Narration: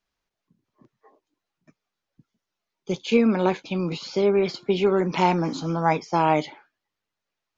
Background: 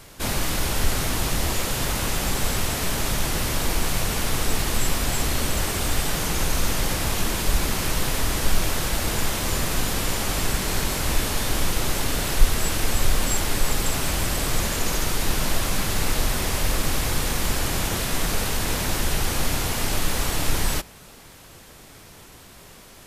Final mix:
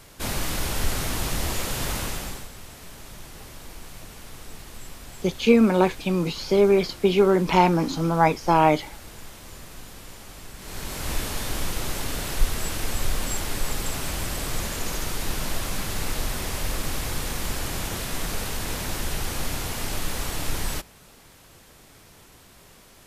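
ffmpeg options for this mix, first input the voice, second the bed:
ffmpeg -i stem1.wav -i stem2.wav -filter_complex "[0:a]adelay=2350,volume=2.5dB[link_01];[1:a]volume=10dB,afade=type=out:start_time=1.95:duration=0.53:silence=0.177828,afade=type=in:start_time=10.56:duration=0.56:silence=0.223872[link_02];[link_01][link_02]amix=inputs=2:normalize=0" out.wav

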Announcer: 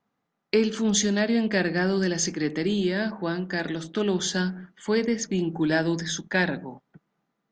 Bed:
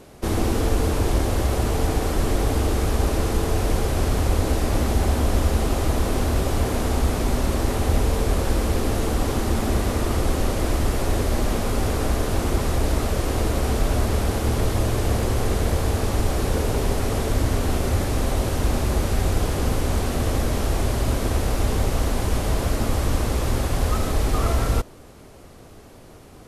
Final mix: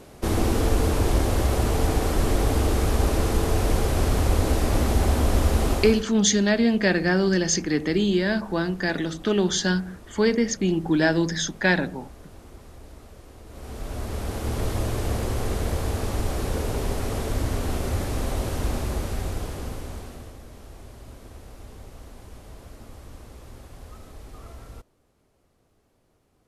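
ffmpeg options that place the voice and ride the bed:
ffmpeg -i stem1.wav -i stem2.wav -filter_complex "[0:a]adelay=5300,volume=3dB[link_01];[1:a]volume=18.5dB,afade=type=out:start_time=5.71:duration=0.34:silence=0.0707946,afade=type=in:start_time=13.46:duration=1.23:silence=0.112202,afade=type=out:start_time=18.64:duration=1.72:silence=0.141254[link_02];[link_01][link_02]amix=inputs=2:normalize=0" out.wav

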